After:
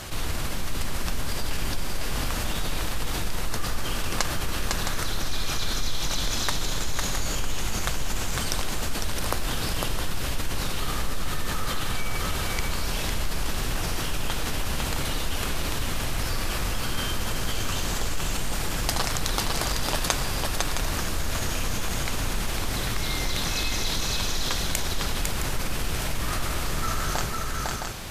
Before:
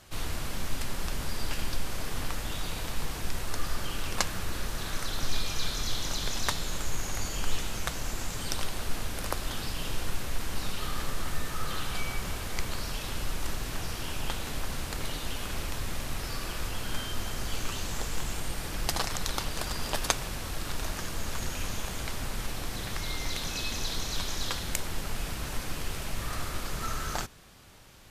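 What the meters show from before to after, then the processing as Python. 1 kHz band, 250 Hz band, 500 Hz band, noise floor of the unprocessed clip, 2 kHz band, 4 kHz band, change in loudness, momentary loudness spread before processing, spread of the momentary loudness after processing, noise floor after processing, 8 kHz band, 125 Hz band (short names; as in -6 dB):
+6.0 dB, +6.0 dB, +6.0 dB, -37 dBFS, +6.0 dB, +6.0 dB, +6.0 dB, 5 LU, 4 LU, -29 dBFS, +6.0 dB, +6.0 dB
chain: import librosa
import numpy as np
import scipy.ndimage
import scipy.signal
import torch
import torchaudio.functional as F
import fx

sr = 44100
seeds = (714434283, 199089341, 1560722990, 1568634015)

y = fx.echo_multitap(x, sr, ms=(503, 664), db=(-5.0, -10.5))
y = fx.env_flatten(y, sr, amount_pct=50)
y = y * librosa.db_to_amplitude(-1.5)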